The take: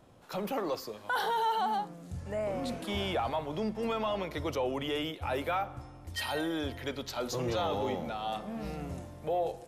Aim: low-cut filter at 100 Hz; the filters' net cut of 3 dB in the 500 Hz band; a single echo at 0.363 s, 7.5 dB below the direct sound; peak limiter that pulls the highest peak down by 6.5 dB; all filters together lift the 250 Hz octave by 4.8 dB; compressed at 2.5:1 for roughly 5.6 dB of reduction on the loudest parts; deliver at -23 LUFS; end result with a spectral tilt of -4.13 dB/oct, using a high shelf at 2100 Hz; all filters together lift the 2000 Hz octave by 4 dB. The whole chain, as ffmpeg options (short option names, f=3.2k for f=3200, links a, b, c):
-af "highpass=100,equalizer=f=250:t=o:g=8,equalizer=f=500:t=o:g=-6,equalizer=f=2k:t=o:g=9,highshelf=f=2.1k:g=-6,acompressor=threshold=-35dB:ratio=2.5,alimiter=level_in=7dB:limit=-24dB:level=0:latency=1,volume=-7dB,aecho=1:1:363:0.422,volume=16dB"